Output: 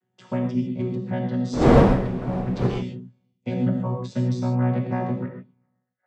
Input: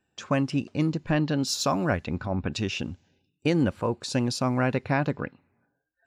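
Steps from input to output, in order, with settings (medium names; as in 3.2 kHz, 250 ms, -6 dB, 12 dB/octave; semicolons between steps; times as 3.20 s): vocoder on a held chord bare fifth, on B2; 1.52–2.66 s: wind noise 470 Hz -23 dBFS; gated-style reverb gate 170 ms flat, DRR 0.5 dB; trim -1 dB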